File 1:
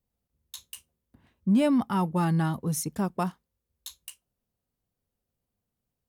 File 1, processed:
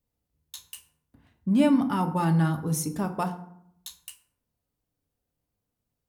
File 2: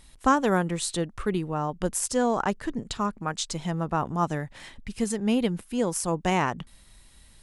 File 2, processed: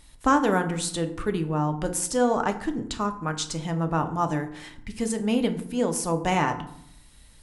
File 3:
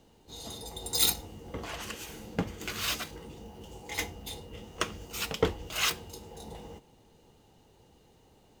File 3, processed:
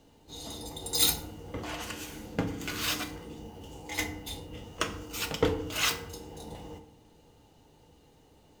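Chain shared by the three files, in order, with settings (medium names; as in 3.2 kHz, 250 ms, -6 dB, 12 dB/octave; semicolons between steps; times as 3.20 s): FDN reverb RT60 0.69 s, low-frequency decay 1.35×, high-frequency decay 0.55×, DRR 6 dB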